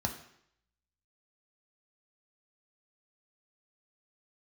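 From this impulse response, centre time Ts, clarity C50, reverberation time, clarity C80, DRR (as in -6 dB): 15 ms, 10.0 dB, 0.70 s, 12.5 dB, 3.0 dB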